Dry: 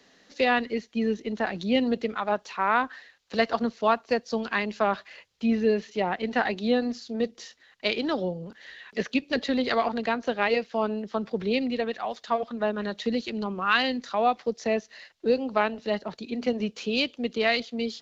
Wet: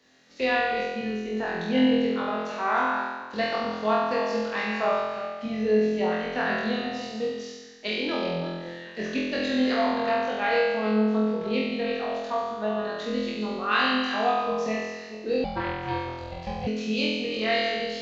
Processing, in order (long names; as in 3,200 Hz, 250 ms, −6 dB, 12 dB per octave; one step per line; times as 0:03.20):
delay that plays each chunk backwards 202 ms, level −8 dB
flutter between parallel walls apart 4 metres, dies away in 1.3 s
0:15.44–0:16.67: ring modulation 300 Hz
level −6.5 dB